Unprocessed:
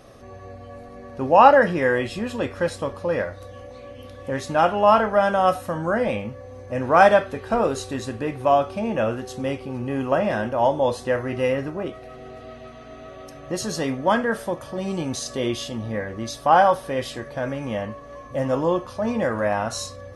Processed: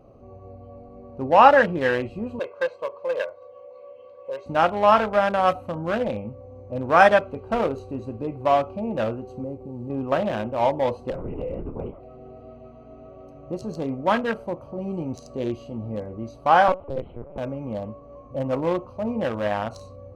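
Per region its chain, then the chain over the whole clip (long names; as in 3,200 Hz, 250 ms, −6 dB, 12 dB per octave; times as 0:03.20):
0:02.39–0:04.46: band-pass filter 550–4,700 Hz + comb filter 1.9 ms, depth 71%
0:09.44–0:09.90: low-pass filter 1,000 Hz + log-companded quantiser 6 bits + downward compressor 1.5 to 1, threshold −32 dBFS
0:11.10–0:12.00: downward compressor, threshold −23 dBFS + linear-prediction vocoder at 8 kHz whisper
0:16.68–0:17.38: high-frequency loss of the air 270 metres + linear-prediction vocoder at 8 kHz pitch kept
whole clip: adaptive Wiener filter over 25 samples; dynamic equaliser 2,200 Hz, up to +5 dB, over −34 dBFS, Q 0.71; level −2 dB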